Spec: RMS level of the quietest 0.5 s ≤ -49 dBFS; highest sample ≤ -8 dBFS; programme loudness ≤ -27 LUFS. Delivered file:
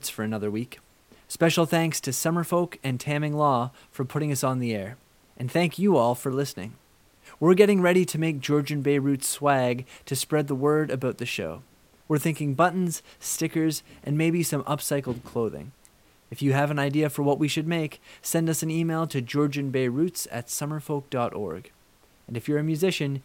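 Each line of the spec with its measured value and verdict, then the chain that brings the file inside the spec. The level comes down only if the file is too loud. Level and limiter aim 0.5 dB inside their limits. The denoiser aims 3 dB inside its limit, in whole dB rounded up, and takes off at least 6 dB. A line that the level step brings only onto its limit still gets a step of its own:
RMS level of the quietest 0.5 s -59 dBFS: OK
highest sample -3.5 dBFS: fail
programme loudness -25.5 LUFS: fail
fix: gain -2 dB; limiter -8.5 dBFS

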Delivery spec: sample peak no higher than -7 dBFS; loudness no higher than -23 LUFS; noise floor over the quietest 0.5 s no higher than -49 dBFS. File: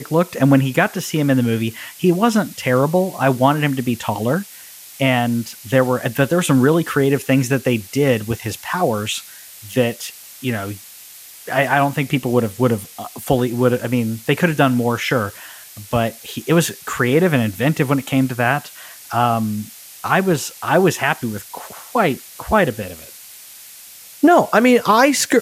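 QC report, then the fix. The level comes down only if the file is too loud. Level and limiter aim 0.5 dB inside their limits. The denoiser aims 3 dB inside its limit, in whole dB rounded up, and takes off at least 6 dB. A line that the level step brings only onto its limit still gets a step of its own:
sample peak -1.5 dBFS: fail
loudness -18.0 LUFS: fail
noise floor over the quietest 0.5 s -40 dBFS: fail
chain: denoiser 7 dB, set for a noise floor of -40 dBFS; gain -5.5 dB; limiter -7.5 dBFS

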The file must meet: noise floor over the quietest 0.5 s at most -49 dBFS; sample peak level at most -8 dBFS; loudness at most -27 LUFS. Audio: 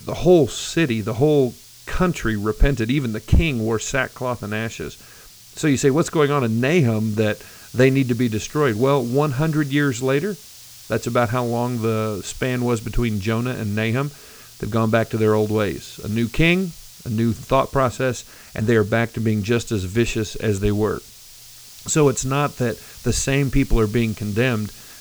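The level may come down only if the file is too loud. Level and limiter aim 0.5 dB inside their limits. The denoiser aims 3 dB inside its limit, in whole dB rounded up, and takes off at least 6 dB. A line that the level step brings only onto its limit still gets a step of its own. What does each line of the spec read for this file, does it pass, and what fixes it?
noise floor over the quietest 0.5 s -44 dBFS: fail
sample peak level -3.5 dBFS: fail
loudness -20.5 LUFS: fail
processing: gain -7 dB

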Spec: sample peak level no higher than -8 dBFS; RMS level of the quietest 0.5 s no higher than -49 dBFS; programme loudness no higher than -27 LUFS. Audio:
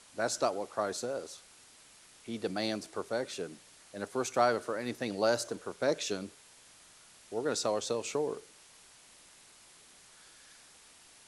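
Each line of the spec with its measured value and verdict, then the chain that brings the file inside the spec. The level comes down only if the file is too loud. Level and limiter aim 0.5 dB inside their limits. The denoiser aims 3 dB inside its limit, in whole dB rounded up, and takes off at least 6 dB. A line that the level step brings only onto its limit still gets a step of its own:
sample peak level -14.5 dBFS: OK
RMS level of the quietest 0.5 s -58 dBFS: OK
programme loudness -34.0 LUFS: OK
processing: none

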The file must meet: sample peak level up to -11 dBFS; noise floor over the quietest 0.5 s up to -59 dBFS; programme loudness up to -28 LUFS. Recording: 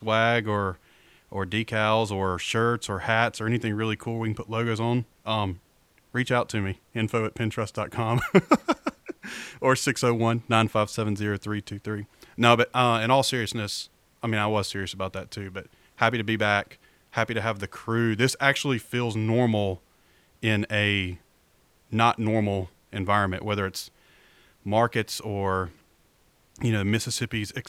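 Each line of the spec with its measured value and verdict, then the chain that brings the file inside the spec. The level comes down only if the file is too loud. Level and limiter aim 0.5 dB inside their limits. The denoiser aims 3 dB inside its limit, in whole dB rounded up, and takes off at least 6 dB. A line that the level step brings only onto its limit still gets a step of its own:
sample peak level -2.0 dBFS: fail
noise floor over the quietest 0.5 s -63 dBFS: OK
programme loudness -25.5 LUFS: fail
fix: gain -3 dB; limiter -11.5 dBFS

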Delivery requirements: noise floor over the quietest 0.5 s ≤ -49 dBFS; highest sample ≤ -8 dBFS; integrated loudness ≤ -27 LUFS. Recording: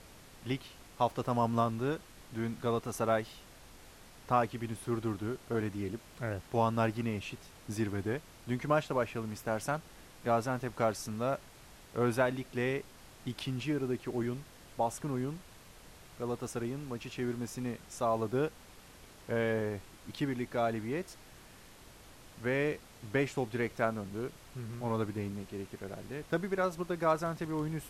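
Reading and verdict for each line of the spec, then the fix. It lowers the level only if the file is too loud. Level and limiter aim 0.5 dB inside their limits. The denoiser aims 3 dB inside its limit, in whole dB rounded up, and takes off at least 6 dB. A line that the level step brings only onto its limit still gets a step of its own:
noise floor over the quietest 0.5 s -55 dBFS: OK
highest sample -15.5 dBFS: OK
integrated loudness -35.0 LUFS: OK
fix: none

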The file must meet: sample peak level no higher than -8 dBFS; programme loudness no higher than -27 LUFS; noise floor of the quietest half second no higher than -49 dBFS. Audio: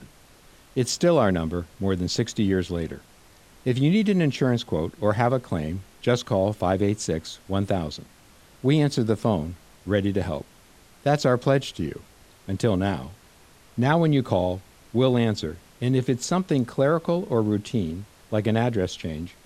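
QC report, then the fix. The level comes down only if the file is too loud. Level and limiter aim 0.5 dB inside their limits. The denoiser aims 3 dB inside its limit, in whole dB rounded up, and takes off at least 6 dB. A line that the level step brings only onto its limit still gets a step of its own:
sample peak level -5.5 dBFS: fail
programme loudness -24.5 LUFS: fail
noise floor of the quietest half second -53 dBFS: OK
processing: gain -3 dB

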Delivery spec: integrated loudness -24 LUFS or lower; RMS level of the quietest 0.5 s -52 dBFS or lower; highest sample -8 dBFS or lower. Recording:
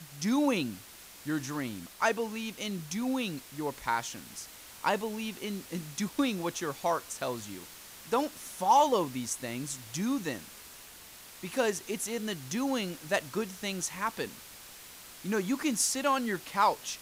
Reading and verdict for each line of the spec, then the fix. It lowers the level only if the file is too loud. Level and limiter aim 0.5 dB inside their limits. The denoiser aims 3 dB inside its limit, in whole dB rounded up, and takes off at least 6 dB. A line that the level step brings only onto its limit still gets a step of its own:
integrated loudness -32.0 LUFS: OK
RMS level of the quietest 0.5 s -50 dBFS: fail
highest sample -14.5 dBFS: OK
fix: denoiser 6 dB, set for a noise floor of -50 dBFS

